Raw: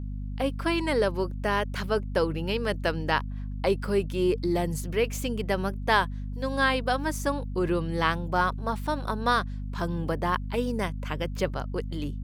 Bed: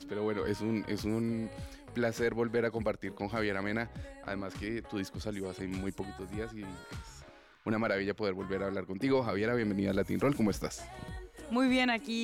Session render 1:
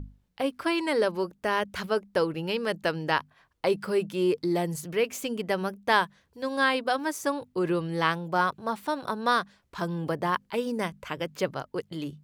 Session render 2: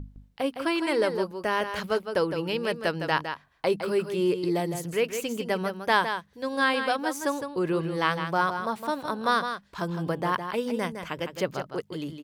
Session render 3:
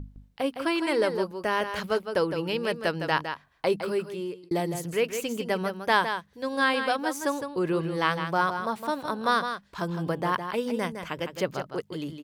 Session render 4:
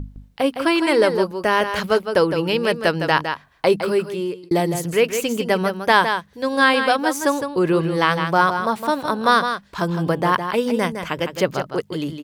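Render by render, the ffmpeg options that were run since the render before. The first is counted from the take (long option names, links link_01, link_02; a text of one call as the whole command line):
ffmpeg -i in.wav -af "bandreject=frequency=50:width_type=h:width=6,bandreject=frequency=100:width_type=h:width=6,bandreject=frequency=150:width_type=h:width=6,bandreject=frequency=200:width_type=h:width=6,bandreject=frequency=250:width_type=h:width=6" out.wav
ffmpeg -i in.wav -af "aecho=1:1:160:0.398" out.wav
ffmpeg -i in.wav -filter_complex "[0:a]asplit=2[link_01][link_02];[link_01]atrim=end=4.51,asetpts=PTS-STARTPTS,afade=type=out:start_time=3.79:duration=0.72[link_03];[link_02]atrim=start=4.51,asetpts=PTS-STARTPTS,afade=type=in:duration=0.004:curve=hsin[link_04];[link_03][link_04]concat=n=2:v=0:a=1" out.wav
ffmpeg -i in.wav -af "volume=8.5dB,alimiter=limit=-3dB:level=0:latency=1" out.wav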